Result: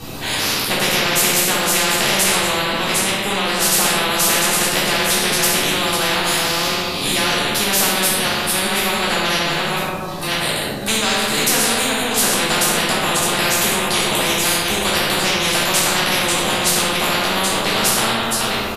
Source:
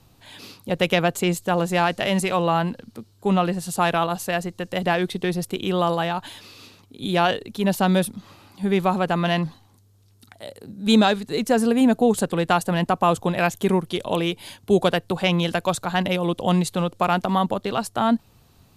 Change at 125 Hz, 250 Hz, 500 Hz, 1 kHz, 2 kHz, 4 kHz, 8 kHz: -2.0, -2.0, +0.5, +3.5, +10.5, +13.5, +19.5 dB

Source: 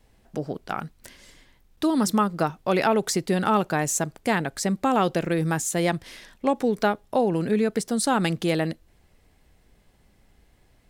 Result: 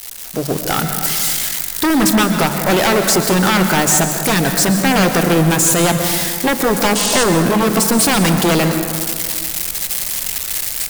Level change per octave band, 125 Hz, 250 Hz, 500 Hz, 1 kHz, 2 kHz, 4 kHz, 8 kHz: +11.0, +9.5, +8.0, +8.0, +13.0, +16.5, +16.0 dB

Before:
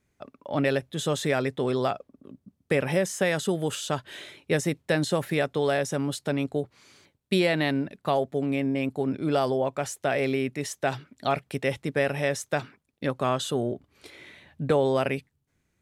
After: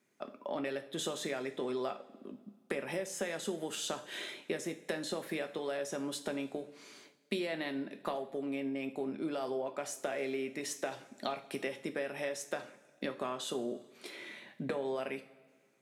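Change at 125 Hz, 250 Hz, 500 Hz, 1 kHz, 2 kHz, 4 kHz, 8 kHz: -20.0, -11.0, -11.0, -11.5, -11.0, -8.0, -6.5 dB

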